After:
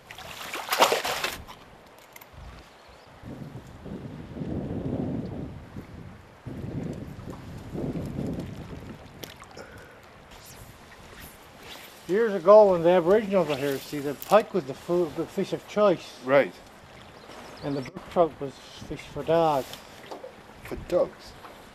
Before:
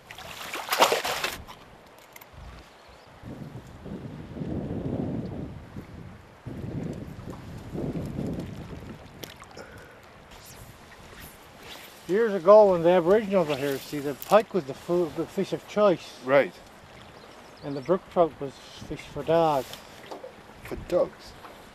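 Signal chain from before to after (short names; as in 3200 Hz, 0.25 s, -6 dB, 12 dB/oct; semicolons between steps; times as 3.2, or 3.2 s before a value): 17.29–18.17 negative-ratio compressor -32 dBFS, ratio -0.5; on a send: reverb RT60 0.45 s, pre-delay 4 ms, DRR 19.5 dB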